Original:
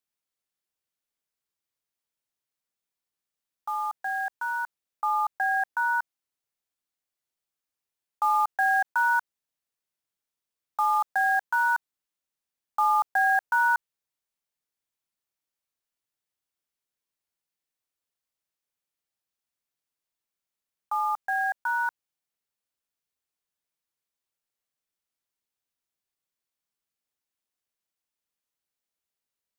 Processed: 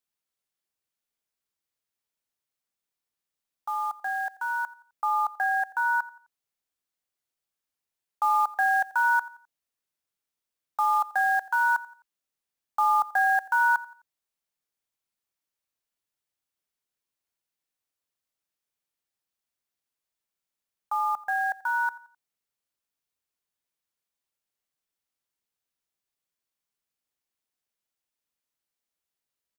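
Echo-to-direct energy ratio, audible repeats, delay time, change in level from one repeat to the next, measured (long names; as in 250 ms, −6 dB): −19.5 dB, 2, 86 ms, −8.0 dB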